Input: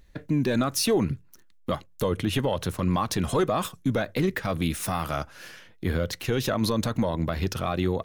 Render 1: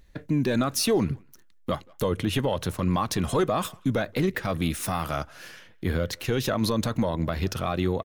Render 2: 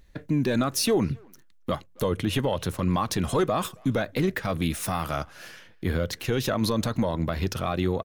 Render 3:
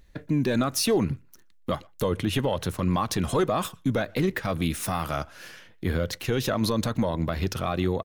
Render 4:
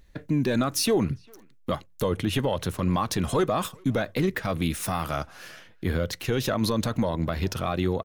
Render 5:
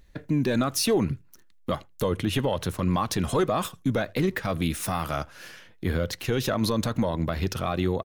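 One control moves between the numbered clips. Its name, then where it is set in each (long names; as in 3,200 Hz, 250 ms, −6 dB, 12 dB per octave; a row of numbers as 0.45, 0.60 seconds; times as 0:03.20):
far-end echo of a speakerphone, delay time: 180, 270, 120, 400, 80 milliseconds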